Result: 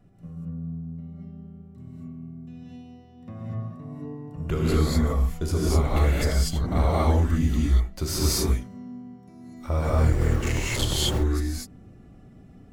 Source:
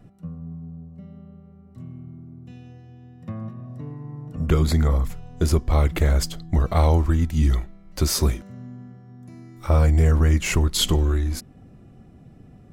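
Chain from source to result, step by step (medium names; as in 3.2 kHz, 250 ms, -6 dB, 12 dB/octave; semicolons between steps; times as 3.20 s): 9.89–10.98 s: cycle switcher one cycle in 2, muted; gated-style reverb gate 270 ms rising, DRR -6.5 dB; trim -8 dB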